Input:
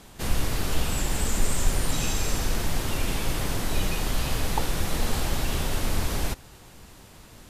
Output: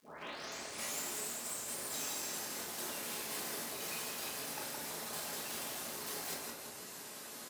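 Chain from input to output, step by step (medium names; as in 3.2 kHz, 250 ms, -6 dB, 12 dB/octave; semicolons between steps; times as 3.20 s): tape start-up on the opening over 1.05 s; reverb removal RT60 1 s; reverse; compression 12:1, threshold -35 dBFS, peak gain reduction 20.5 dB; reverse; treble shelf 3.9 kHz +8 dB; crackle 150 per s -53 dBFS; on a send: frequency-shifting echo 166 ms, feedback 58%, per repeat +36 Hz, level -6 dB; on the sum: wavefolder -33.5 dBFS; high-pass 390 Hz 12 dB/octave; peaking EQ 3 kHz -3.5 dB 0.85 oct; simulated room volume 250 m³, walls mixed, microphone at 1.4 m; trim -1.5 dB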